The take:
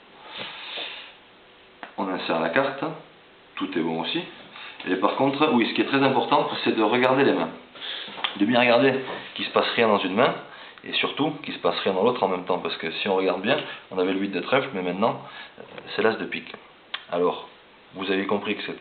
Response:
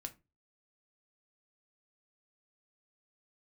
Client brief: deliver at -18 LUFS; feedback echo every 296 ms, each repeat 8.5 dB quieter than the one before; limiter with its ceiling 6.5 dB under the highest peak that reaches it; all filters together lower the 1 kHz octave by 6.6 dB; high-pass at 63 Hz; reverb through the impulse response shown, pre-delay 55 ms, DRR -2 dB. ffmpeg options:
-filter_complex "[0:a]highpass=63,equalizer=f=1000:t=o:g=-8.5,alimiter=limit=0.237:level=0:latency=1,aecho=1:1:296|592|888|1184:0.376|0.143|0.0543|0.0206,asplit=2[s0][s1];[1:a]atrim=start_sample=2205,adelay=55[s2];[s1][s2]afir=irnorm=-1:irlink=0,volume=1.88[s3];[s0][s3]amix=inputs=2:normalize=0,volume=1.68"

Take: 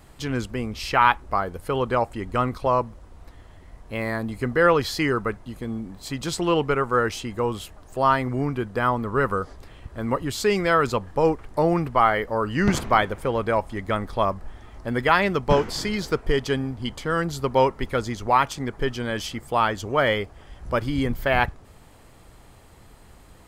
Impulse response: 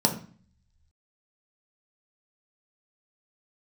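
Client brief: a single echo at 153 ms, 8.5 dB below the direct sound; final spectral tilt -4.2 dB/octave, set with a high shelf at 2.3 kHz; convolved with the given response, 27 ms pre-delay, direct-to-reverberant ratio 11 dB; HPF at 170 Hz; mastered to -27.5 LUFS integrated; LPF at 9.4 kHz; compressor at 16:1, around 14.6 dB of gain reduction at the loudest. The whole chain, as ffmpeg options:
-filter_complex "[0:a]highpass=170,lowpass=9400,highshelf=f=2300:g=5,acompressor=threshold=0.0501:ratio=16,aecho=1:1:153:0.376,asplit=2[s0][s1];[1:a]atrim=start_sample=2205,adelay=27[s2];[s1][s2]afir=irnorm=-1:irlink=0,volume=0.0708[s3];[s0][s3]amix=inputs=2:normalize=0,volume=1.41"

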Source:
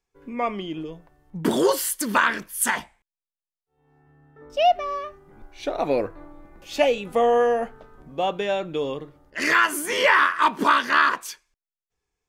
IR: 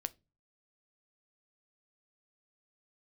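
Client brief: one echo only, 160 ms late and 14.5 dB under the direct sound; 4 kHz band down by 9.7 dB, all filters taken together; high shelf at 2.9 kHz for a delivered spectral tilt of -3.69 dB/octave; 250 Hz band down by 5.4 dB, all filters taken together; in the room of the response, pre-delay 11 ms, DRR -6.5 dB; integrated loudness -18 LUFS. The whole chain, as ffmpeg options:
-filter_complex "[0:a]equalizer=f=250:t=o:g=-7,highshelf=f=2900:g=-8.5,equalizer=f=4000:t=o:g=-7.5,aecho=1:1:160:0.188,asplit=2[s0][s1];[1:a]atrim=start_sample=2205,adelay=11[s2];[s1][s2]afir=irnorm=-1:irlink=0,volume=2.51[s3];[s0][s3]amix=inputs=2:normalize=0,volume=0.891"

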